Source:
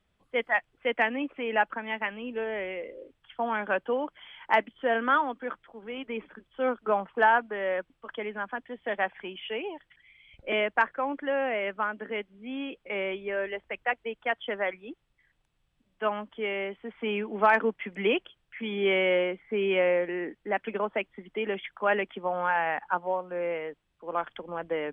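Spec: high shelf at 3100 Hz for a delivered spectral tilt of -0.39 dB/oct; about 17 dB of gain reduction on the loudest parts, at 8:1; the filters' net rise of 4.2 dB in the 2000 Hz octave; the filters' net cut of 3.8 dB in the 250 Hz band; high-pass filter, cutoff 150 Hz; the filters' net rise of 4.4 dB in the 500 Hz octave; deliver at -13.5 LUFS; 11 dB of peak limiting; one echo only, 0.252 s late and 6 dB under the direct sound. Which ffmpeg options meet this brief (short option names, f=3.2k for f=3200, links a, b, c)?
-af "highpass=150,equalizer=f=250:t=o:g=-8.5,equalizer=f=500:t=o:g=7,equalizer=f=2k:t=o:g=3.5,highshelf=f=3.1k:g=4,acompressor=threshold=-32dB:ratio=8,alimiter=level_in=5.5dB:limit=-24dB:level=0:latency=1,volume=-5.5dB,aecho=1:1:252:0.501,volume=25dB"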